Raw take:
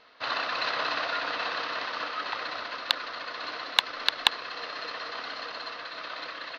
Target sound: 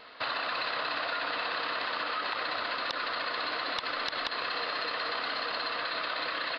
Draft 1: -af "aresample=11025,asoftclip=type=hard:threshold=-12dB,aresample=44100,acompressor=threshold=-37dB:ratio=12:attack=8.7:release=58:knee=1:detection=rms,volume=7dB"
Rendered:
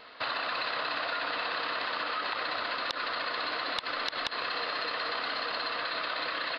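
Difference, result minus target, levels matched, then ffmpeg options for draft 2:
hard clipping: distortion −5 dB
-af "aresample=11025,asoftclip=type=hard:threshold=-19.5dB,aresample=44100,acompressor=threshold=-37dB:ratio=12:attack=8.7:release=58:knee=1:detection=rms,volume=7dB"

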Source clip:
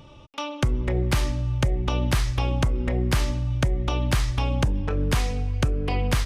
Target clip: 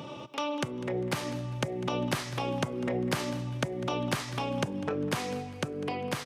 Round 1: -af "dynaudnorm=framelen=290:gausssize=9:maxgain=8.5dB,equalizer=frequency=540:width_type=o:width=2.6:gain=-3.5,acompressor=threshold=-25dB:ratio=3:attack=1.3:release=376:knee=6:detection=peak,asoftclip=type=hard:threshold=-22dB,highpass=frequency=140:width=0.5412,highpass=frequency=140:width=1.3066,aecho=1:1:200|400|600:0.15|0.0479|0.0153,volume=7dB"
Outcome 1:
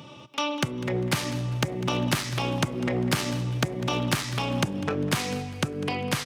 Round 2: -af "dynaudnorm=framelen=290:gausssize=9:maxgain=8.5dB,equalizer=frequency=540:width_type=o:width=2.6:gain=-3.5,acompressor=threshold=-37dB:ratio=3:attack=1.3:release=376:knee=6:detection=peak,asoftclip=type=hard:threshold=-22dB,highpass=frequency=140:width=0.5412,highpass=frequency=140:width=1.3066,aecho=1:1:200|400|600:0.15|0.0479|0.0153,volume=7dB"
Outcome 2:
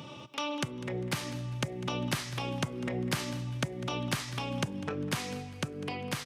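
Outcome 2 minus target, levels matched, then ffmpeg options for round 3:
500 Hz band −3.5 dB
-af "dynaudnorm=framelen=290:gausssize=9:maxgain=8.5dB,equalizer=frequency=540:width_type=o:width=2.6:gain=4,acompressor=threshold=-37dB:ratio=3:attack=1.3:release=376:knee=6:detection=peak,asoftclip=type=hard:threshold=-22dB,highpass=frequency=140:width=0.5412,highpass=frequency=140:width=1.3066,aecho=1:1:200|400|600:0.15|0.0479|0.0153,volume=7dB"

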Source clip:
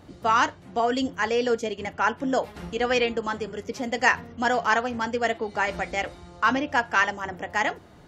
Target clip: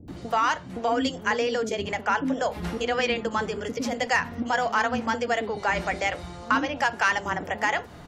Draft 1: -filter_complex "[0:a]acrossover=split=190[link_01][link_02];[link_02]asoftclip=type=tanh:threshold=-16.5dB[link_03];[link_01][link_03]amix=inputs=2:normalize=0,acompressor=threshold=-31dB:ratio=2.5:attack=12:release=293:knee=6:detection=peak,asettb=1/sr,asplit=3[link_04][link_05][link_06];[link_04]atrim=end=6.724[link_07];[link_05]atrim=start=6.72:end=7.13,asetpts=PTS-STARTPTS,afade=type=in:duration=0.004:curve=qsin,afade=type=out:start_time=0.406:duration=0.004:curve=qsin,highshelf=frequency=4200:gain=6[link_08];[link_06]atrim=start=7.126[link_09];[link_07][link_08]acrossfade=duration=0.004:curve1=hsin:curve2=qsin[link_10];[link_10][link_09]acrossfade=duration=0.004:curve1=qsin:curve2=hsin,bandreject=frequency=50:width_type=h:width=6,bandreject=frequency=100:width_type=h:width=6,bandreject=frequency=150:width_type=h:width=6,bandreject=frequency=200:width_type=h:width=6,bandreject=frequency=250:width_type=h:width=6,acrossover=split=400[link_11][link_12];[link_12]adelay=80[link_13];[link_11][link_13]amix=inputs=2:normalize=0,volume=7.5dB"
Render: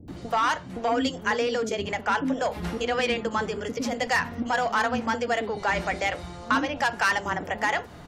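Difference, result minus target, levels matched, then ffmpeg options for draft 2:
soft clipping: distortion +11 dB
-filter_complex "[0:a]acrossover=split=190[link_01][link_02];[link_02]asoftclip=type=tanh:threshold=-8.5dB[link_03];[link_01][link_03]amix=inputs=2:normalize=0,acompressor=threshold=-31dB:ratio=2.5:attack=12:release=293:knee=6:detection=peak,asettb=1/sr,asplit=3[link_04][link_05][link_06];[link_04]atrim=end=6.724[link_07];[link_05]atrim=start=6.72:end=7.13,asetpts=PTS-STARTPTS,afade=type=in:duration=0.004:curve=qsin,afade=type=out:start_time=0.406:duration=0.004:curve=qsin,highshelf=frequency=4200:gain=6[link_08];[link_06]atrim=start=7.126[link_09];[link_07][link_08]acrossfade=duration=0.004:curve1=hsin:curve2=qsin[link_10];[link_10][link_09]acrossfade=duration=0.004:curve1=qsin:curve2=hsin,bandreject=frequency=50:width_type=h:width=6,bandreject=frequency=100:width_type=h:width=6,bandreject=frequency=150:width_type=h:width=6,bandreject=frequency=200:width_type=h:width=6,bandreject=frequency=250:width_type=h:width=6,acrossover=split=400[link_11][link_12];[link_12]adelay=80[link_13];[link_11][link_13]amix=inputs=2:normalize=0,volume=7.5dB"

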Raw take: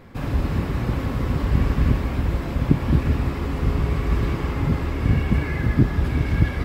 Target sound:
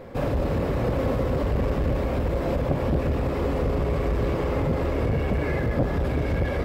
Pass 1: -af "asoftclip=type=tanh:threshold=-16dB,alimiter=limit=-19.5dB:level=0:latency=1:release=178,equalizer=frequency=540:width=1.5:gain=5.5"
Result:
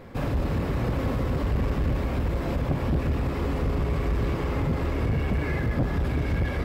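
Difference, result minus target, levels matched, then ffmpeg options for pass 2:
500 Hz band −4.5 dB
-af "asoftclip=type=tanh:threshold=-16dB,alimiter=limit=-19.5dB:level=0:latency=1:release=178,equalizer=frequency=540:width=1.5:gain=13.5"

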